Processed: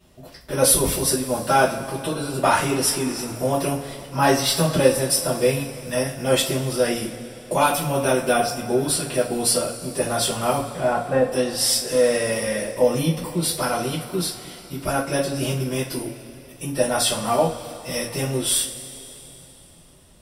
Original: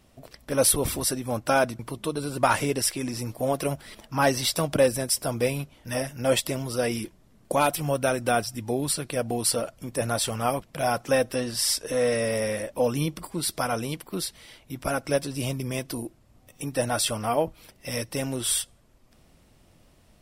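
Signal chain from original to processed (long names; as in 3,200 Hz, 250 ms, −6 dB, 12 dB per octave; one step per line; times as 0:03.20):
0:10.63–0:11.31: low-pass filter 2,400 Hz → 1,200 Hz 12 dB per octave
coupled-rooms reverb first 0.29 s, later 3.5 s, from −21 dB, DRR −10 dB
level −6 dB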